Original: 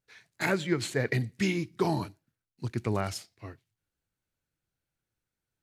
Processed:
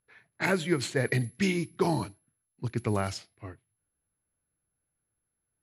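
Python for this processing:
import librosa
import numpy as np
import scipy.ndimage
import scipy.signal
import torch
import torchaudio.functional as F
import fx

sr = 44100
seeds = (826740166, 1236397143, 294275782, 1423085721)

y = x + 10.0 ** (-49.0 / 20.0) * np.sin(2.0 * np.pi * 11000.0 * np.arange(len(x)) / sr)
y = fx.env_lowpass(y, sr, base_hz=1700.0, full_db=-24.5)
y = F.gain(torch.from_numpy(y), 1.0).numpy()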